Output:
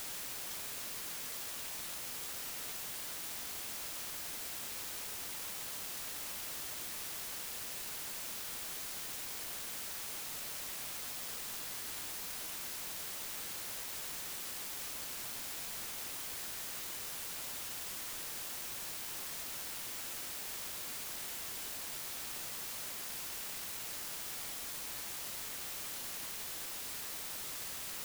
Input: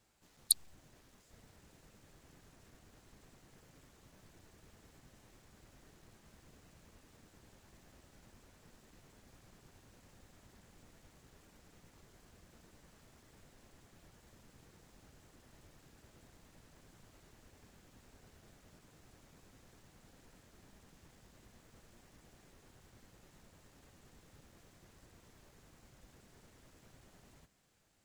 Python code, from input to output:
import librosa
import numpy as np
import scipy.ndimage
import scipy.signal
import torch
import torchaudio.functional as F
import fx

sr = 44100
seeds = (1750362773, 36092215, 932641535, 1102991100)

p1 = fx.spec_gate(x, sr, threshold_db=-30, keep='weak')
p2 = fx.quant_dither(p1, sr, seeds[0], bits=6, dither='triangular')
p3 = p1 + (p2 * librosa.db_to_amplitude(-9.0))
y = p3 * librosa.db_to_amplitude(2.5)